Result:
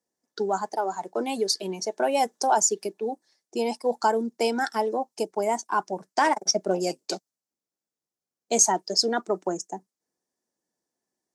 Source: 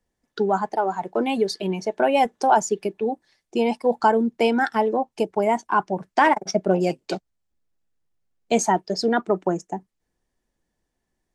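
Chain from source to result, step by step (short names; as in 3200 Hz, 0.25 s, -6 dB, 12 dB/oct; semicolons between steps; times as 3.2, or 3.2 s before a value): HPF 250 Hz 12 dB/oct; resonant high shelf 4000 Hz +10.5 dB, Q 1.5; mismatched tape noise reduction decoder only; gain -4 dB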